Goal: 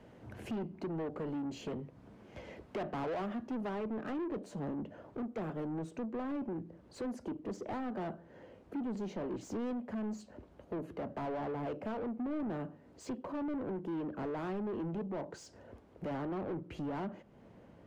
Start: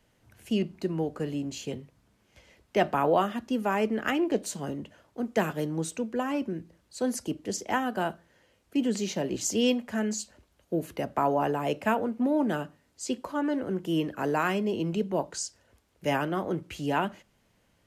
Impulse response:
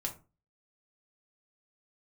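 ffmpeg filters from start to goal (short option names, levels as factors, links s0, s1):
-filter_complex "[0:a]tiltshelf=f=690:g=10,acompressor=threshold=0.00794:ratio=2.5,asetnsamples=n=441:p=0,asendcmd='3.69 lowpass f 1000',asplit=2[s0][s1];[s1]highpass=f=720:p=1,volume=20,asoftclip=type=tanh:threshold=0.0501[s2];[s0][s2]amix=inputs=2:normalize=0,lowpass=f=1800:p=1,volume=0.501,volume=0.631"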